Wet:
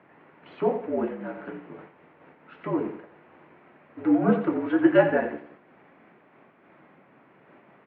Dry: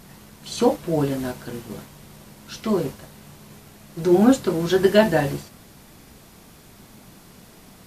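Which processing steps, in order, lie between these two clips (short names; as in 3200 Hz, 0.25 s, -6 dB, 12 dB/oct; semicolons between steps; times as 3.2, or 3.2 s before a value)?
feedback echo 88 ms, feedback 34%, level -10 dB; mistuned SSB -58 Hz 290–2400 Hz; noise-modulated level, depth 60%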